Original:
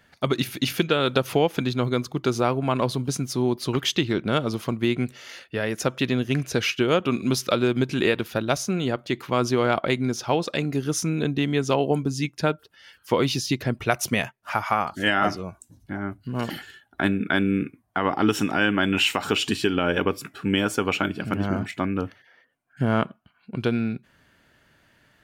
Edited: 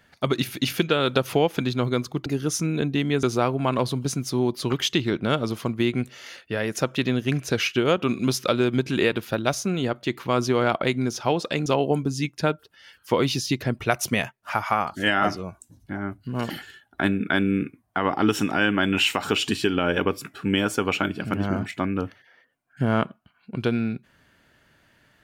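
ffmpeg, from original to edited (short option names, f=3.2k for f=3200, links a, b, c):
-filter_complex "[0:a]asplit=4[a][b][c][d];[a]atrim=end=2.262[e];[b]atrim=start=10.688:end=11.662[f];[c]atrim=start=2.258:end=10.692[g];[d]atrim=start=11.658[h];[e][f]acrossfade=d=0.004:c1=hsin:c2=hsin[i];[i][g]acrossfade=d=0.004:c1=hsin:c2=hsin[j];[j][h]acrossfade=d=0.004:c1=hsin:c2=hsin"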